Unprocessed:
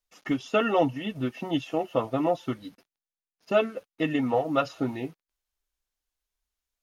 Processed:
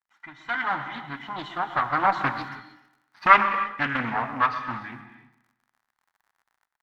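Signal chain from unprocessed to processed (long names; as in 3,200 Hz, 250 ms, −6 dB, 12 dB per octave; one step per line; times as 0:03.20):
one-sided soft clipper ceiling −27 dBFS
source passing by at 0:02.79, 34 m/s, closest 10 metres
octave-band graphic EQ 125/250/500/1,000/2,000/4,000 Hz +11/+6/−7/+7/+10/+11 dB
reverb whose tail is shaped and stops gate 350 ms flat, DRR 8.5 dB
surface crackle 57 per second −58 dBFS
delay with a low-pass on its return 127 ms, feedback 40%, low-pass 3,600 Hz, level −14.5 dB
automatic gain control gain up to 8 dB
flat-topped bell 1,200 Hz +14 dB
highs frequency-modulated by the lows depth 0.36 ms
level −7 dB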